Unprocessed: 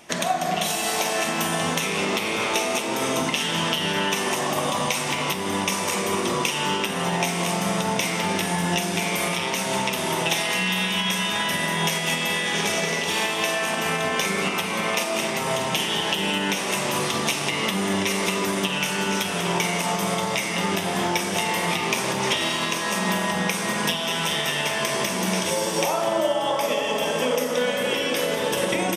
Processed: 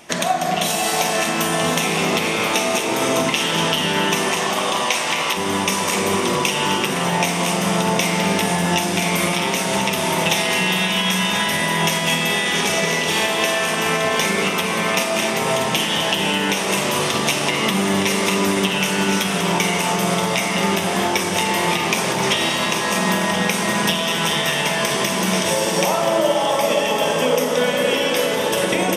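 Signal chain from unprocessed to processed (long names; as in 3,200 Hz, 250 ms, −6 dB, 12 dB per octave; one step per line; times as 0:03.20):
0:04.31–0:05.37: meter weighting curve A
on a send: delay that swaps between a low-pass and a high-pass 515 ms, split 1,000 Hz, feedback 68%, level −6.5 dB
on the sum: level +4 dB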